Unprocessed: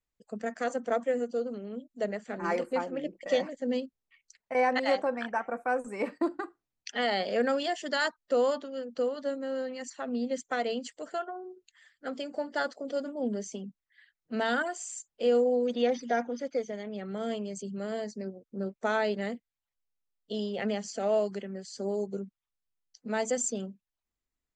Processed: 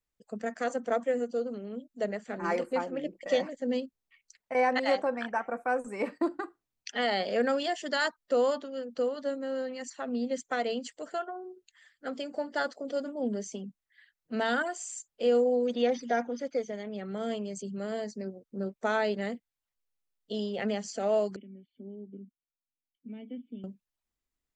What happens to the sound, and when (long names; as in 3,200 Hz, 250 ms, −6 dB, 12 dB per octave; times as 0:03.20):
0:21.36–0:23.64: formant resonators in series i